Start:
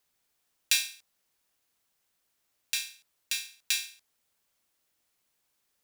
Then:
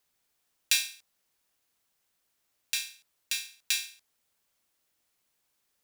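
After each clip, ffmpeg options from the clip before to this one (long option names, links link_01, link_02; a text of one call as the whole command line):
ffmpeg -i in.wav -af anull out.wav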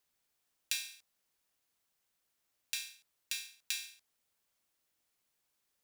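ffmpeg -i in.wav -af "acompressor=threshold=-30dB:ratio=2.5,volume=-4.5dB" out.wav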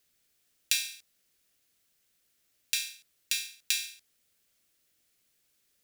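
ffmpeg -i in.wav -af "equalizer=frequency=930:width_type=o:width=0.91:gain=-11,volume=8.5dB" out.wav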